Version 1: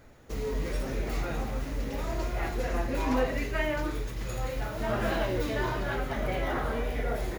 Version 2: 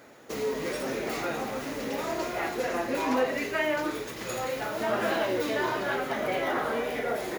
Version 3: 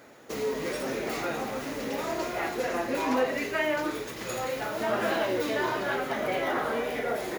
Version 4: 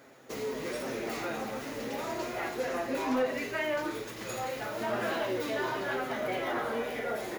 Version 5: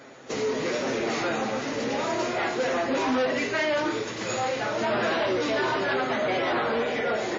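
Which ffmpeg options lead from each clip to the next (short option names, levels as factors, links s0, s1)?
-filter_complex "[0:a]highpass=260,asplit=2[s0][s1];[s1]alimiter=level_in=1.78:limit=0.0631:level=0:latency=1:release=455,volume=0.562,volume=1.12[s2];[s0][s2]amix=inputs=2:normalize=0"
-af anull
-af "flanger=delay=7.4:depth=1.8:regen=64:speed=0.35:shape=triangular,aeval=exprs='0.141*sin(PI/2*1.41*val(0)/0.141)':c=same,volume=0.501"
-af "volume=33.5,asoftclip=hard,volume=0.0299,highpass=88,volume=2.66" -ar 16000 -c:a wmav2 -b:a 32k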